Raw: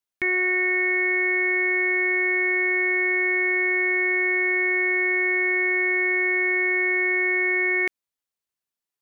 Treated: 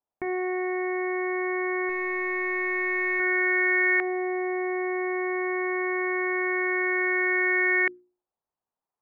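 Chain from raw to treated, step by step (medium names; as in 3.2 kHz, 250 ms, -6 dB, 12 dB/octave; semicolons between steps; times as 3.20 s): 1.89–3.20 s: overdrive pedal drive 11 dB, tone 2 kHz, clips at -15.5 dBFS; in parallel at -1.5 dB: peak limiter -27 dBFS, peak gain reduction 11.5 dB; on the sum: LFO low-pass saw up 0.25 Hz 790–1600 Hz; hum notches 60/120/180/240/300/360 Hz; trim -2.5 dB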